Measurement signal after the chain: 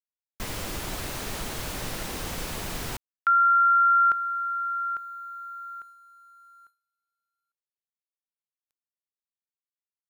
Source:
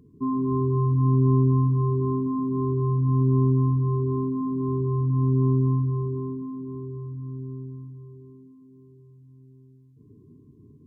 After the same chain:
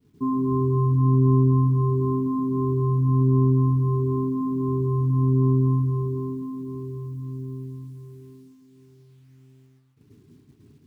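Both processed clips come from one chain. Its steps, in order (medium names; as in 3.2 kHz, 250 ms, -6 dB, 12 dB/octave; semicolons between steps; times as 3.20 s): bit crusher 11-bit; expander -47 dBFS; trim +1.5 dB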